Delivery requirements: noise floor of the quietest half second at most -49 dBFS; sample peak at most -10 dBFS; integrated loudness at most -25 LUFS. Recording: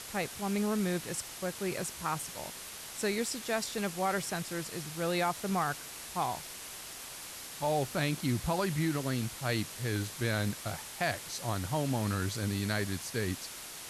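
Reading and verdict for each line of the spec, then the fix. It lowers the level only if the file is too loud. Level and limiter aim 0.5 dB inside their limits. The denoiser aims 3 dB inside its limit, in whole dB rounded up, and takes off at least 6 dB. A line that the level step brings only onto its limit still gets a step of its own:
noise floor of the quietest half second -45 dBFS: fail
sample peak -18.0 dBFS: OK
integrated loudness -34.0 LUFS: OK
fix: denoiser 7 dB, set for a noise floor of -45 dBFS

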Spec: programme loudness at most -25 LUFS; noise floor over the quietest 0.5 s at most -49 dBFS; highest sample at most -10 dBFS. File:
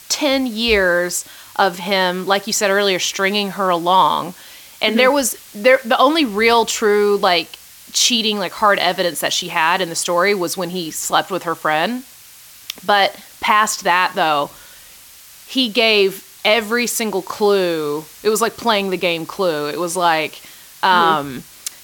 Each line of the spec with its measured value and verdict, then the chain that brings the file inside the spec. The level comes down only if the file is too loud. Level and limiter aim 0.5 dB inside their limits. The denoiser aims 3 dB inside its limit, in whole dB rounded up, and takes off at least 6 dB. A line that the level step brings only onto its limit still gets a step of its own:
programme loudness -16.5 LUFS: fail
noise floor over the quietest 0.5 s -42 dBFS: fail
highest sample -1.5 dBFS: fail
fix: gain -9 dB

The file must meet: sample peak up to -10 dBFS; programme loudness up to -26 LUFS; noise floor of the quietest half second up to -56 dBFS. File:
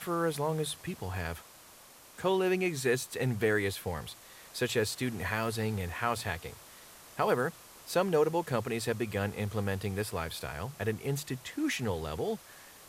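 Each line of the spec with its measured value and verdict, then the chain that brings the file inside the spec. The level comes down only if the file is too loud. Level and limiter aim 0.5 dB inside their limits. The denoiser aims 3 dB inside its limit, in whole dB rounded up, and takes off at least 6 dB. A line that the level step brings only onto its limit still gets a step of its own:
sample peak -14.5 dBFS: OK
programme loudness -32.5 LUFS: OK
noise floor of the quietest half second -55 dBFS: fail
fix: denoiser 6 dB, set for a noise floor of -55 dBFS

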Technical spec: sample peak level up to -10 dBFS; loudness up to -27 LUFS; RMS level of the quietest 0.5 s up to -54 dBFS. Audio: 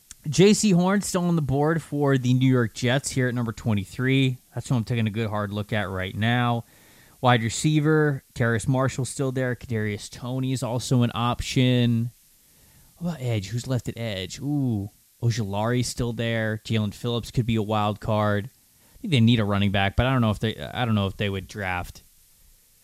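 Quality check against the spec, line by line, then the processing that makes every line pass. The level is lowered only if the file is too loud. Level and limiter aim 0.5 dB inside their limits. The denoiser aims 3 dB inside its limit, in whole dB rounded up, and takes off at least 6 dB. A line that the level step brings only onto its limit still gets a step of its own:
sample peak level -5.5 dBFS: fail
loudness -24.5 LUFS: fail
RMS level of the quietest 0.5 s -57 dBFS: OK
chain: gain -3 dB; limiter -10.5 dBFS

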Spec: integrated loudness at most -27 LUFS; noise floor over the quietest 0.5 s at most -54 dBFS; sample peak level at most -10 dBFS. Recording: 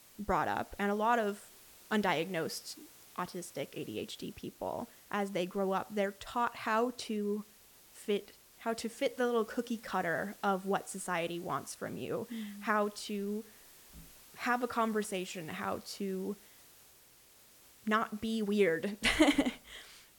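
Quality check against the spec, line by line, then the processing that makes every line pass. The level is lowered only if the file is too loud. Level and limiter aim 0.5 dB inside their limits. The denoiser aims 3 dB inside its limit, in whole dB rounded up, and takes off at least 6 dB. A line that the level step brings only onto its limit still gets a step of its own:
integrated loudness -35.0 LUFS: OK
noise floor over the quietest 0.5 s -61 dBFS: OK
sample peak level -13.0 dBFS: OK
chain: none

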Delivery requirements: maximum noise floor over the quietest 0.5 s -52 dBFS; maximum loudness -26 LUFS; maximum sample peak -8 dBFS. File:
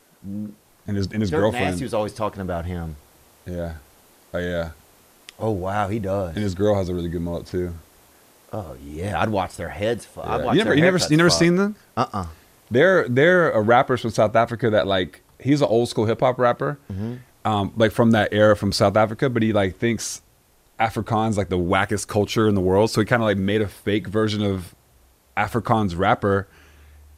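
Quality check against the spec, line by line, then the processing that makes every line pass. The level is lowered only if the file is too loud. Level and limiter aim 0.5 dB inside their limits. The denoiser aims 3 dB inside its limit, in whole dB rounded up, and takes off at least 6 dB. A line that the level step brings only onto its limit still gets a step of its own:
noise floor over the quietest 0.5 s -58 dBFS: OK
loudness -21.0 LUFS: fail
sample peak -4.0 dBFS: fail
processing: gain -5.5 dB

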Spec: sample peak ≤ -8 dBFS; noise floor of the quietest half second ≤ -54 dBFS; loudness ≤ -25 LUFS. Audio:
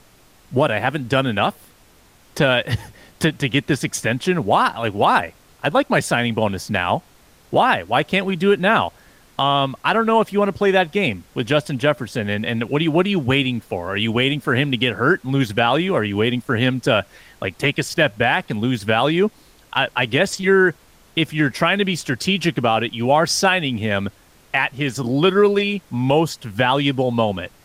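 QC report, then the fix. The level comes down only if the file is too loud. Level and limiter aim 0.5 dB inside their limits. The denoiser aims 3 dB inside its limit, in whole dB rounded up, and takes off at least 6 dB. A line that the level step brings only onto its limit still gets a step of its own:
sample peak -5.0 dBFS: fail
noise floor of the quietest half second -52 dBFS: fail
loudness -19.0 LUFS: fail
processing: gain -6.5 dB

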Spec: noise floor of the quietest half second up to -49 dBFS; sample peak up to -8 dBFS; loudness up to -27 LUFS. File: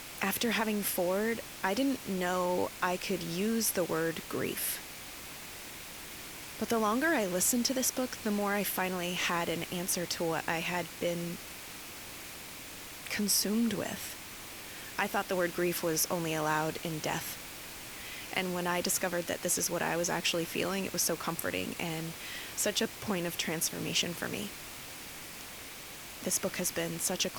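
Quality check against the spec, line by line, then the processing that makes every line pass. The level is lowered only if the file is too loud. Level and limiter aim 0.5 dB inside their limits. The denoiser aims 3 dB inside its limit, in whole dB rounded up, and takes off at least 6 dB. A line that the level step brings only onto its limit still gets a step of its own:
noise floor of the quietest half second -46 dBFS: fail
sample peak -15.0 dBFS: OK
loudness -32.5 LUFS: OK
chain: denoiser 6 dB, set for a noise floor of -46 dBFS

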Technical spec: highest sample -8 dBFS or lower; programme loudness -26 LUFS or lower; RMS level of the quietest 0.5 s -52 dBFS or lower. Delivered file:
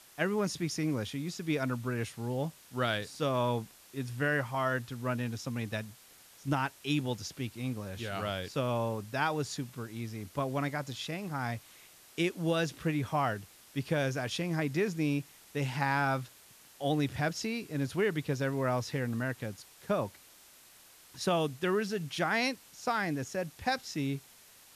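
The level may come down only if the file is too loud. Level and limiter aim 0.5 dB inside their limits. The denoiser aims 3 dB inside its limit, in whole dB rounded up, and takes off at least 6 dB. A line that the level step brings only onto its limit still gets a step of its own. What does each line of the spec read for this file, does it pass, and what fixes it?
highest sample -15.5 dBFS: OK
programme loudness -33.5 LUFS: OK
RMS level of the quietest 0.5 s -58 dBFS: OK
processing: none

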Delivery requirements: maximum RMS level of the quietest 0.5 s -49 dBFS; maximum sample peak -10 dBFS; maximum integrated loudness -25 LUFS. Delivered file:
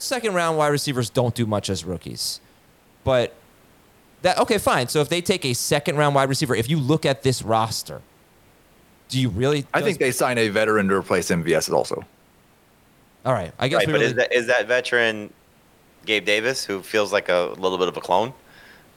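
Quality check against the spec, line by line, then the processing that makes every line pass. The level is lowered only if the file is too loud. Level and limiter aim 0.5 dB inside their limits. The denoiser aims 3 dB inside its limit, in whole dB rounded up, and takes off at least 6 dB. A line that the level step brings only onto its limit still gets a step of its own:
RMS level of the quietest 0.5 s -56 dBFS: OK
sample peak -4.0 dBFS: fail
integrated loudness -21.5 LUFS: fail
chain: gain -4 dB; limiter -10.5 dBFS

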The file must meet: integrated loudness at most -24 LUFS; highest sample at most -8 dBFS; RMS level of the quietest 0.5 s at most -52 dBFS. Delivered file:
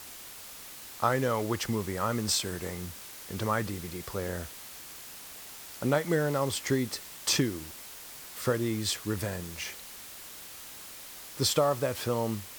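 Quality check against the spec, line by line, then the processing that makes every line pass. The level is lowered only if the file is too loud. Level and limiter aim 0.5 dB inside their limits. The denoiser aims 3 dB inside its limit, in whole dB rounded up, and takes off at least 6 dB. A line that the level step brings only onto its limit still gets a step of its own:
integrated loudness -30.5 LUFS: OK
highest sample -10.0 dBFS: OK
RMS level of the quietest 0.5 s -46 dBFS: fail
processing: denoiser 9 dB, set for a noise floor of -46 dBFS

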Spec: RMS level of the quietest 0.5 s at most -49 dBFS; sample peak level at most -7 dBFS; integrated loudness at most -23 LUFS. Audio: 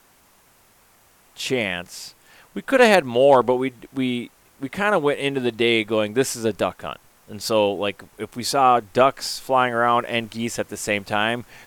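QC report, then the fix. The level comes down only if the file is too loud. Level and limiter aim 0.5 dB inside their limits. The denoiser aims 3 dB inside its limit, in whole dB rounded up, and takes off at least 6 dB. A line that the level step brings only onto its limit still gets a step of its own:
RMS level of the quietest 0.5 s -56 dBFS: OK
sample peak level -4.5 dBFS: fail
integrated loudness -21.0 LUFS: fail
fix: gain -2.5 dB; limiter -7.5 dBFS

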